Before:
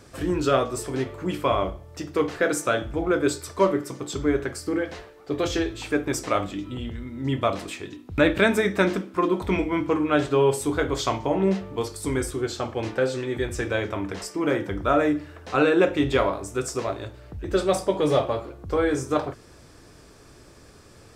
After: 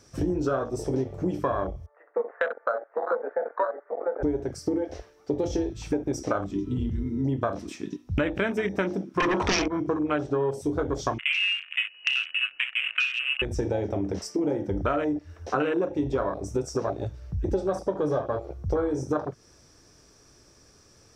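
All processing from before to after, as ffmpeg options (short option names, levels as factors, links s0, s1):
-filter_complex "[0:a]asettb=1/sr,asplit=3[s0][s1][s2];[s0]atrim=end=1.864[s3];[s1]atrim=start=1.86:end=4.23,asetpts=PTS-STARTPTS,afade=t=in:d=0.004:c=qsin,afade=t=out:st=2.366:d=0.004:c=qsin,asuperpass=centerf=960:order=12:qfactor=0.67,aecho=1:1:953:0.631,atrim=end_sample=104517[s4];[s2]atrim=start=4.226[s5];[s3][s4]acrossfade=d=0.004:c1=hsin:c2=qsin[s6];[s6][s5]acrossfade=d=0.004:c1=qsin:c2=hsin,asettb=1/sr,asplit=3[s7][s8][s9];[s7]atrim=end=9.204[s10];[s8]atrim=start=9.2:end=9.68,asetpts=PTS-STARTPTS,afade=t=in:d=0.004:c=qsin,afade=t=out:st=0.476:d=0.004:c=qsin,lowpass=f=7800:w=0.5412,lowpass=f=7800:w=1.3066,lowshelf=f=410:g=-12,aeval=exprs='0.237*sin(PI/2*5.62*val(0)/0.237)':c=same[s11];[s9]atrim=start=9.676[s12];[s10][s11]acrossfade=d=0.004:c1=hsin:c2=qsin[s13];[s13][s12]acrossfade=d=0.004:c1=qsin:c2=hsin,asettb=1/sr,asplit=3[s14][s15][s16];[s14]atrim=end=11.184[s17];[s15]atrim=start=11.18:end=13.42,asetpts=PTS-STARTPTS,afade=t=in:d=0.004:c=qsin,afade=t=out:st=2.236:d=0.004:c=qsin,tiltshelf=f=1400:g=3,asoftclip=type=hard:threshold=0.2,lowpass=f=2600:t=q:w=0.5098,lowpass=f=2600:t=q:w=0.6013,lowpass=f=2600:t=q:w=0.9,lowpass=f=2600:t=q:w=2.563,afreqshift=-3000[s18];[s16]atrim=start=13.416[s19];[s17][s18]acrossfade=d=0.004:c1=hsin:c2=qsin[s20];[s20][s19]acrossfade=d=0.004:c1=qsin:c2=hsin,afwtdn=0.0562,equalizer=f=5700:w=4.1:g=14.5,acompressor=threshold=0.0251:ratio=6,volume=2.51"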